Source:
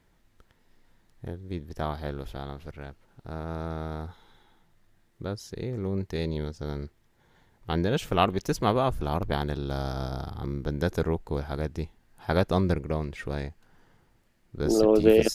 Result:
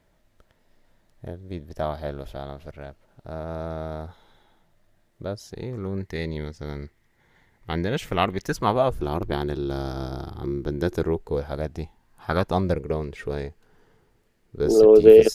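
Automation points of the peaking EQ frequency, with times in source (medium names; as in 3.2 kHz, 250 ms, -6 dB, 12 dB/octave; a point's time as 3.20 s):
peaking EQ +10.5 dB 0.3 oct
5.42 s 610 Hz
6.08 s 2 kHz
8.43 s 2 kHz
9.01 s 350 Hz
11.07 s 350 Hz
12.34 s 1.3 kHz
12.83 s 430 Hz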